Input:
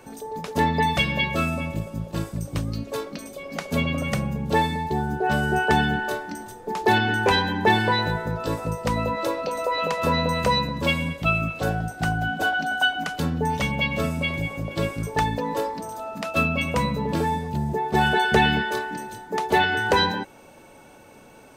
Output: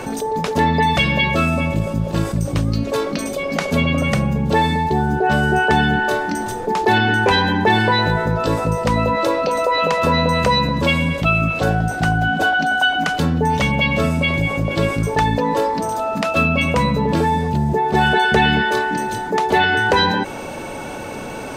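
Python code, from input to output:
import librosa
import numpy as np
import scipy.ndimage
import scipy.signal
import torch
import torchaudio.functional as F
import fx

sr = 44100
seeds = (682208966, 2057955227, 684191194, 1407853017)

y = fx.high_shelf(x, sr, hz=11000.0, db=-10.5)
y = fx.env_flatten(y, sr, amount_pct=50)
y = y * librosa.db_to_amplitude(2.5)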